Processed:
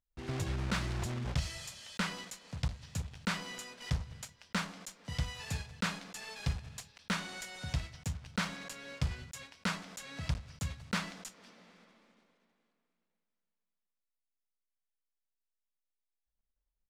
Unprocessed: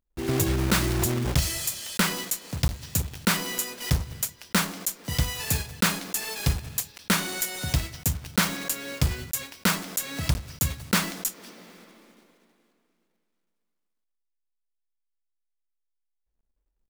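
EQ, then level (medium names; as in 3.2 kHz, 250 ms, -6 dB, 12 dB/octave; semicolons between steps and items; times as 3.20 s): distance through air 84 m; peaking EQ 340 Hz -8.5 dB 0.64 oct; -9.0 dB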